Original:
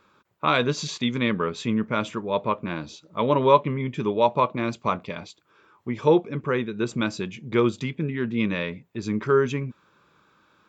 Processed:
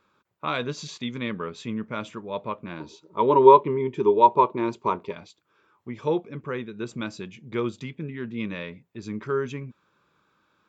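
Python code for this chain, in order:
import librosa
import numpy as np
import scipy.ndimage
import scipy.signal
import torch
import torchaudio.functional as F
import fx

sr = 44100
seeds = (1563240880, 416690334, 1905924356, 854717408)

y = fx.small_body(x, sr, hz=(390.0, 930.0), ring_ms=45, db=17, at=(2.8, 5.13))
y = F.gain(torch.from_numpy(y), -6.5).numpy()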